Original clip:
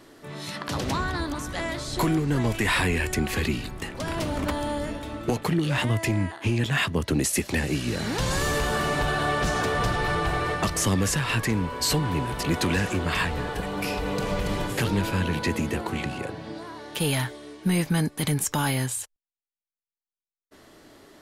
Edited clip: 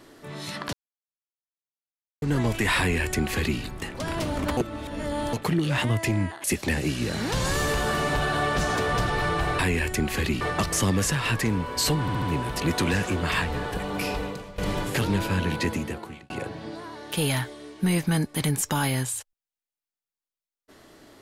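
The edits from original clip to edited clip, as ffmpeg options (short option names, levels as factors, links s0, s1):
-filter_complex "[0:a]asplit=13[s0][s1][s2][s3][s4][s5][s6][s7][s8][s9][s10][s11][s12];[s0]atrim=end=0.73,asetpts=PTS-STARTPTS,afade=t=out:st=0.726:d=0.004:c=hsin[s13];[s1]atrim=start=0.73:end=2.22,asetpts=PTS-STARTPTS,volume=0[s14];[s2]atrim=start=2.22:end=4.572,asetpts=PTS-STARTPTS,afade=t=in:d=0.004:c=hsin[s15];[s3]atrim=start=4.568:end=5.332,asetpts=PTS-STARTPTS,areverse[s16];[s4]atrim=start=5.328:end=6.442[s17];[s5]atrim=start=7.298:end=10.452[s18];[s6]atrim=start=2.778:end=3.602[s19];[s7]atrim=start=10.448:end=12.122[s20];[s8]atrim=start=12.048:end=12.122[s21];[s9]atrim=start=12.048:end=12.122[s22];[s10]atrim=start=12.048:end=14.41,asetpts=PTS-STARTPTS,afade=t=out:st=1.962:d=0.4:c=qua:silence=0.133352[s23];[s11]atrim=start=14.41:end=16.13,asetpts=PTS-STARTPTS,afade=t=in:d=0.004:c=hsin:silence=0.133352,afade=t=out:st=1.06:d=0.66[s24];[s12]atrim=start=16.13,asetpts=PTS-STARTPTS,afade=t=in:d=0.004:c=hsin[s25];[s13][s14][s15]concat=n=3:v=0:a=1[s26];[s26][s16]acrossfade=d=0.004:c1=hsin:c2=hsin[s27];[s27][s17]acrossfade=d=0.004:c1=hsin:c2=hsin[s28];[s28][s18]acrossfade=d=0.004:c1=hsin:c2=hsin[s29];[s29][s19]acrossfade=d=0.004:c1=hsin:c2=hsin[s30];[s30][s20]acrossfade=d=0.004:c1=hsin:c2=hsin[s31];[s31][s21]acrossfade=d=0.004:c1=hsin:c2=hsin[s32];[s32][s22]acrossfade=d=0.004:c1=hsin:c2=hsin[s33];[s23][s24][s25]concat=n=3:v=0:a=1[s34];[s33][s34]acrossfade=d=0.004:c1=hsin:c2=hsin"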